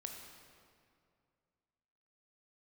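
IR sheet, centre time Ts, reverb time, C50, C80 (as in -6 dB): 66 ms, 2.3 s, 3.5 dB, 4.5 dB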